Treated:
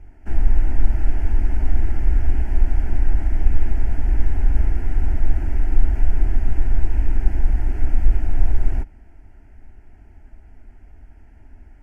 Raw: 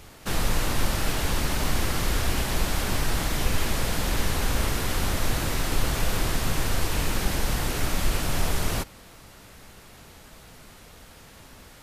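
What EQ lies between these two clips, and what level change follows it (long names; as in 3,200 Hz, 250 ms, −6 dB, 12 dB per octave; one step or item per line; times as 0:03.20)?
RIAA equalisation playback
high-shelf EQ 5,800 Hz −9 dB
phaser with its sweep stopped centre 760 Hz, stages 8
−6.5 dB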